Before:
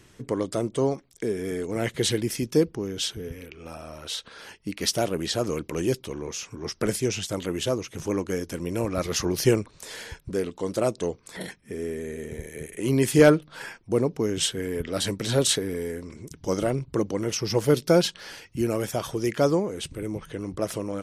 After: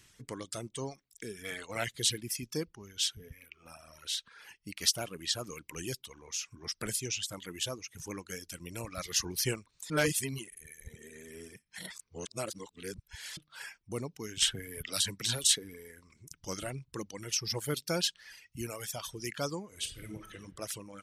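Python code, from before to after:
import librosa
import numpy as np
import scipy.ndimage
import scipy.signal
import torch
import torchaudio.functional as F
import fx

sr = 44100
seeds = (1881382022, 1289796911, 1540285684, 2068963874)

y = fx.spec_box(x, sr, start_s=1.44, length_s=0.4, low_hz=470.0, high_hz=4400.0, gain_db=9)
y = fx.band_squash(y, sr, depth_pct=100, at=(14.42, 15.44))
y = fx.reverb_throw(y, sr, start_s=19.67, length_s=0.68, rt60_s=1.0, drr_db=1.0)
y = fx.edit(y, sr, fx.reverse_span(start_s=9.9, length_s=3.47), tone=tone)
y = fx.dereverb_blind(y, sr, rt60_s=1.6)
y = fx.tone_stack(y, sr, knobs='5-5-5')
y = y * librosa.db_to_amplitude(5.0)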